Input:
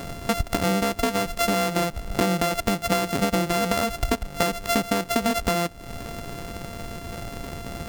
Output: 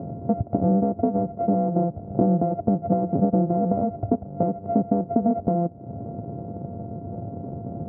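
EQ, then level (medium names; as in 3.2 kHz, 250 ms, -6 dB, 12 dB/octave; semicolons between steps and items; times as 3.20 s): Chebyshev band-pass 100–700 Hz, order 3; bass shelf 320 Hz +7.5 dB; 0.0 dB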